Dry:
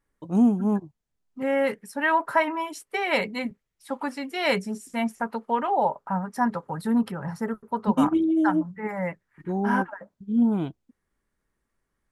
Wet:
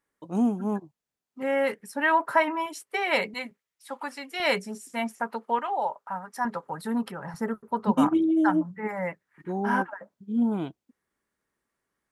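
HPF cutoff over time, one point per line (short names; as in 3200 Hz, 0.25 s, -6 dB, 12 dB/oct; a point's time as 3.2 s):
HPF 6 dB/oct
340 Hz
from 1.8 s 130 Hz
from 2.66 s 320 Hz
from 3.34 s 860 Hz
from 4.4 s 370 Hz
from 5.59 s 1100 Hz
from 6.45 s 390 Hz
from 7.34 s 110 Hz
from 8.88 s 260 Hz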